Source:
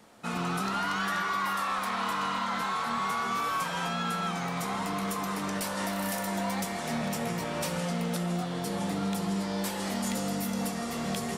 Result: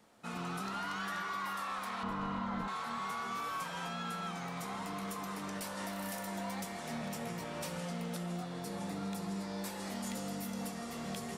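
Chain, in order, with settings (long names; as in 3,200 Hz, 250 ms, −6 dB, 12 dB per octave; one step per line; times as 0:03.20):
0:02.03–0:02.68: spectral tilt −4 dB per octave
0:08.40–0:09.91: notch filter 3,100 Hz, Q 11
level −8.5 dB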